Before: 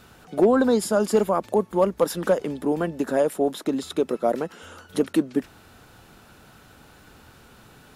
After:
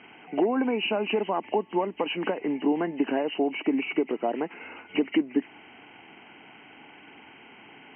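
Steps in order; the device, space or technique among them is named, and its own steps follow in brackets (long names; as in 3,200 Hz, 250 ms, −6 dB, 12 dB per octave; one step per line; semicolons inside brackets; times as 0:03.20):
hearing aid with frequency lowering (hearing-aid frequency compression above 1,900 Hz 4 to 1; downward compressor 4 to 1, threshold −23 dBFS, peak gain reduction 9 dB; loudspeaker in its box 290–6,400 Hz, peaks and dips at 290 Hz +5 dB, 540 Hz −9 dB, 840 Hz +4 dB, 1,300 Hz −9 dB, 3,300 Hz −7 dB)
level +3 dB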